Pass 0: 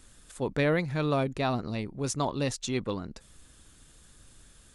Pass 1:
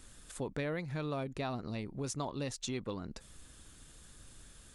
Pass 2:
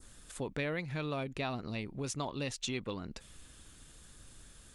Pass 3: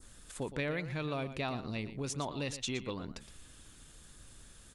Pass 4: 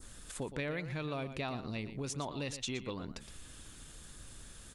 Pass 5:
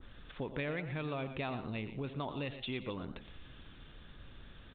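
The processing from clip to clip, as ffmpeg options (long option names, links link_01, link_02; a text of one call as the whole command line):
ffmpeg -i in.wav -af "acompressor=threshold=-37dB:ratio=3" out.wav
ffmpeg -i in.wav -af "adynamicequalizer=threshold=0.00126:dfrequency=2700:dqfactor=1.3:tfrequency=2700:tqfactor=1.3:attack=5:release=100:ratio=0.375:range=3.5:mode=boostabove:tftype=bell" out.wav
ffmpeg -i in.wav -af "aecho=1:1:117:0.237" out.wav
ffmpeg -i in.wav -af "acompressor=threshold=-49dB:ratio=1.5,volume=4dB" out.wav
ffmpeg -i in.wav -filter_complex "[0:a]aresample=8000,aresample=44100,asplit=4[link_01][link_02][link_03][link_04];[link_02]adelay=89,afreqshift=120,volume=-17dB[link_05];[link_03]adelay=178,afreqshift=240,volume=-25.9dB[link_06];[link_04]adelay=267,afreqshift=360,volume=-34.7dB[link_07];[link_01][link_05][link_06][link_07]amix=inputs=4:normalize=0" out.wav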